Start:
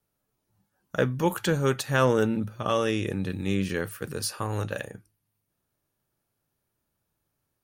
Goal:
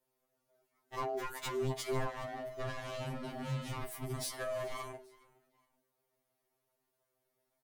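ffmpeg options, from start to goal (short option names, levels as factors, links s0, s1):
-filter_complex "[0:a]aeval=exprs='val(0)*sin(2*PI*530*n/s)':c=same,acompressor=threshold=0.0355:ratio=12,asettb=1/sr,asplit=3[s0][s1][s2];[s0]atrim=end=1.724[s3];[s1]atrim=start=1.72:end=4.31,asetpts=PTS-STARTPTS,afade=t=in:d=0.004:c=qsin,afade=t=out:st=2.586:d=0.004:c=qsin,asubboost=boost=6.5:cutoff=210[s4];[s2]atrim=start=4.306[s5];[s3][s4]acrossfade=d=0.004:c1=hsin:c2=qsin[s6];[s6][s5]acrossfade=d=0.004:c1=qsin:c2=hsin,asoftclip=type=hard:threshold=0.0237,asplit=3[s7][s8][s9];[s8]adelay=415,afreqshift=-40,volume=0.0708[s10];[s9]adelay=830,afreqshift=-80,volume=0.0234[s11];[s7][s10][s11]amix=inputs=3:normalize=0,afftfilt=real='re*2.45*eq(mod(b,6),0)':imag='im*2.45*eq(mod(b,6),0)':win_size=2048:overlap=0.75,volume=1.19"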